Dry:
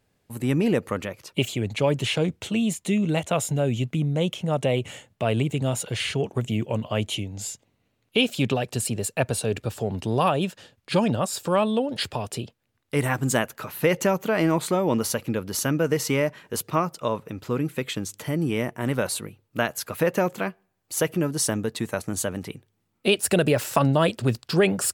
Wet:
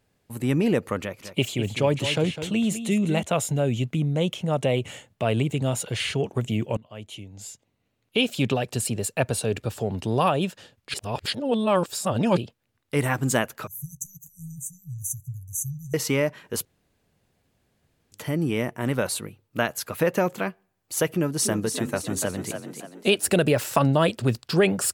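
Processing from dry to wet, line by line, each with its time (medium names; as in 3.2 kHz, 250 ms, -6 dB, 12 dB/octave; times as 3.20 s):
1.00–3.23 s: delay 204 ms -10.5 dB
6.77–8.46 s: fade in, from -22 dB
10.94–12.37 s: reverse
13.67–15.94 s: brick-wall FIR band-stop 150–5900 Hz
16.65–18.12 s: room tone
21.07–23.36 s: frequency-shifting echo 290 ms, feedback 46%, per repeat +40 Hz, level -7.5 dB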